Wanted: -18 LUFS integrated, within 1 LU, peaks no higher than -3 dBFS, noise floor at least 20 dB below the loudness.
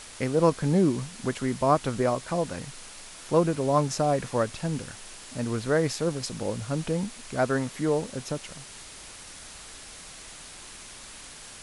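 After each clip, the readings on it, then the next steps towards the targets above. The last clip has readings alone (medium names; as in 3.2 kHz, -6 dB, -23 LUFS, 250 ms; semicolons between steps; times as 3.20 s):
noise floor -45 dBFS; noise floor target -47 dBFS; loudness -27.0 LUFS; peak level -8.0 dBFS; loudness target -18.0 LUFS
-> noise print and reduce 6 dB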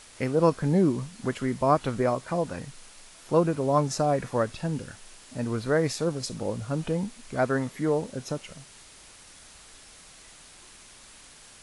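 noise floor -51 dBFS; loudness -27.5 LUFS; peak level -8.0 dBFS; loudness target -18.0 LUFS
-> trim +9.5 dB; peak limiter -3 dBFS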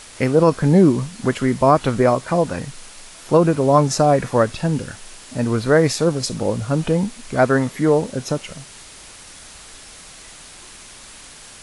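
loudness -18.0 LUFS; peak level -3.0 dBFS; noise floor -41 dBFS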